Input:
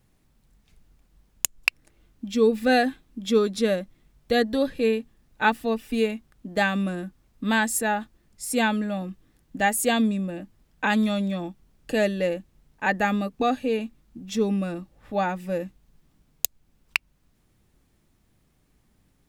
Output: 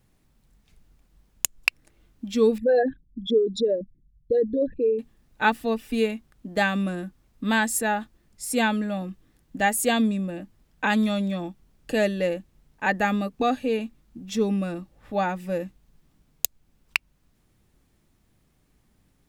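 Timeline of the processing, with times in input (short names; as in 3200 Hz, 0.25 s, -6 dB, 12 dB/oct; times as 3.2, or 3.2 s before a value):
2.58–4.99 formant sharpening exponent 3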